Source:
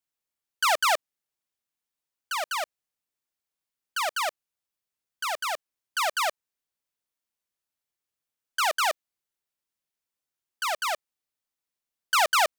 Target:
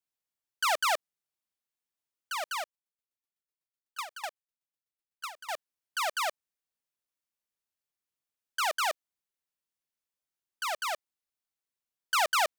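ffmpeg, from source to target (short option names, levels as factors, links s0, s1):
-filter_complex "[0:a]asettb=1/sr,asplit=3[s0][s1][s2];[s0]atrim=end=2.614[s3];[s1]atrim=start=2.61:end=5.5,asetpts=PTS-STARTPTS,afade=t=in:d=0.004:c=qsin,afade=t=out:st=2.886:d=0.004:c=qsin,aeval=exprs='val(0)*pow(10,-19*if(lt(mod(8*n/s,1),2*abs(8)/1000),1-mod(8*n/s,1)/(2*abs(8)/1000),(mod(8*n/s,1)-2*abs(8)/1000)/(1-2*abs(8)/1000))/20)':c=same[s4];[s2]atrim=start=5.496[s5];[s3][s4]acrossfade=d=0.004:c1=hsin:c2=qsin[s6];[s6][s5]acrossfade=d=0.004:c1=qsin:c2=hsin,volume=0.596"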